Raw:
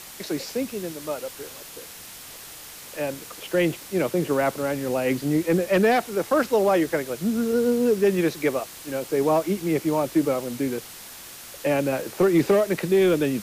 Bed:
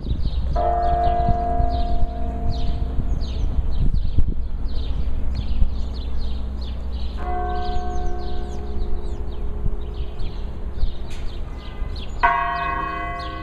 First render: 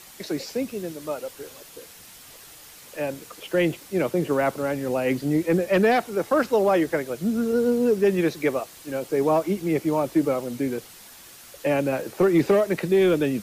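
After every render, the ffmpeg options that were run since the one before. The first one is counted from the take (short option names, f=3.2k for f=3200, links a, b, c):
-af "afftdn=nr=6:nf=-42"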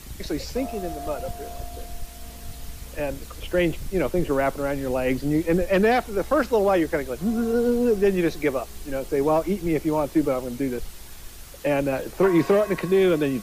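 -filter_complex "[1:a]volume=-15.5dB[a];[0:a][a]amix=inputs=2:normalize=0"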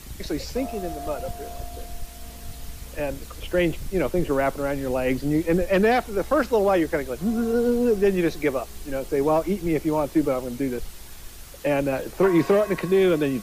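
-af anull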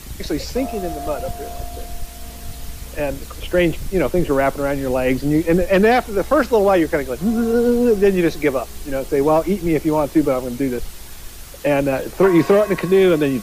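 -af "volume=5.5dB"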